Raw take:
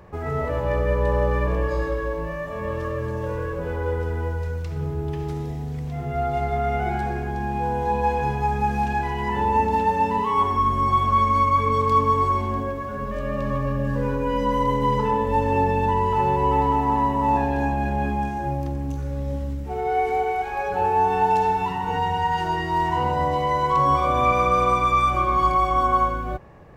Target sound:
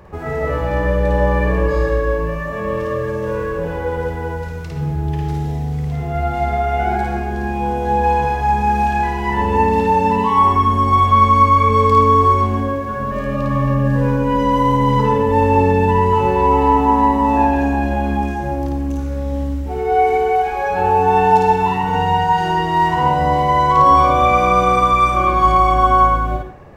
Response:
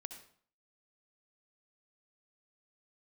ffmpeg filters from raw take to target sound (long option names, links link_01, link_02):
-filter_complex "[0:a]asplit=2[link_01][link_02];[1:a]atrim=start_sample=2205,asetrate=52920,aresample=44100,adelay=54[link_03];[link_02][link_03]afir=irnorm=-1:irlink=0,volume=5dB[link_04];[link_01][link_04]amix=inputs=2:normalize=0,volume=3.5dB"